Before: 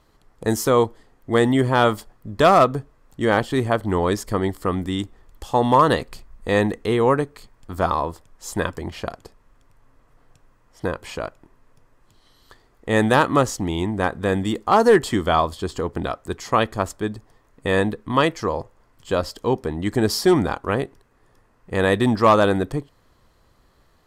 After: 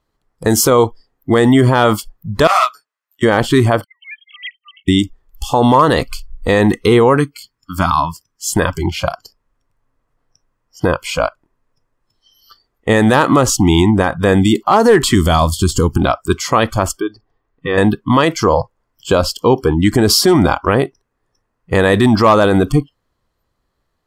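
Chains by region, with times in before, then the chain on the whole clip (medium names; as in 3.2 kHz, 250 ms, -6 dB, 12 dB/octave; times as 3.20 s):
2.47–3.23 s: high-pass 1.5 kHz + detune thickener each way 35 cents
3.84–4.88 s: formants replaced by sine waves + elliptic high-pass 2.2 kHz, stop band 70 dB + expander -57 dBFS
7.17–8.56 s: high-pass 90 Hz 6 dB/octave + peaking EQ 630 Hz -11 dB 1 oct
15.15–15.98 s: tone controls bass +10 dB, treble +14 dB + upward expansion, over -28 dBFS
17.00–17.78 s: comb 2.6 ms, depth 30% + compression 2.5:1, threshold -28 dBFS + distance through air 150 m
whole clip: spectral noise reduction 25 dB; loudness maximiser +15 dB; trim -1 dB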